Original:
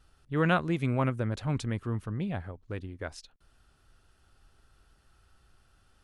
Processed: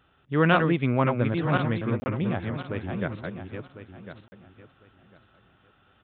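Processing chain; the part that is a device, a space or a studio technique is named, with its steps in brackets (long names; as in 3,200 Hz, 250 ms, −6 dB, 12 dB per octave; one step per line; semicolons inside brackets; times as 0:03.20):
feedback delay that plays each chunk backwards 526 ms, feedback 44%, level −4.5 dB
call with lost packets (high-pass filter 120 Hz 12 dB per octave; downsampling to 8,000 Hz; dropped packets of 20 ms bursts)
level +5.5 dB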